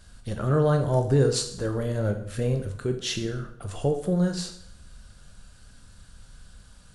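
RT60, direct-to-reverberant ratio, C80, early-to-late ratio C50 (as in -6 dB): 0.65 s, 5.0 dB, 12.5 dB, 9.5 dB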